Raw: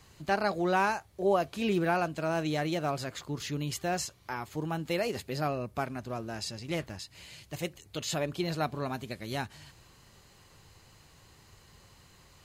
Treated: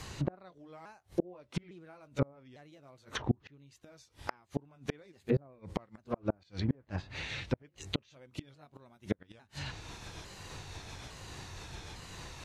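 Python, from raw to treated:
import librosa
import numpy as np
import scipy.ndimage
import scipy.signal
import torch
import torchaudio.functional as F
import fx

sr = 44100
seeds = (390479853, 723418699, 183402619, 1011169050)

y = fx.pitch_ramps(x, sr, semitones=-3.5, every_ms=854)
y = fx.gate_flip(y, sr, shuts_db=-29.0, range_db=-36)
y = fx.env_lowpass_down(y, sr, base_hz=810.0, full_db=-41.0)
y = y * 10.0 ** (12.5 / 20.0)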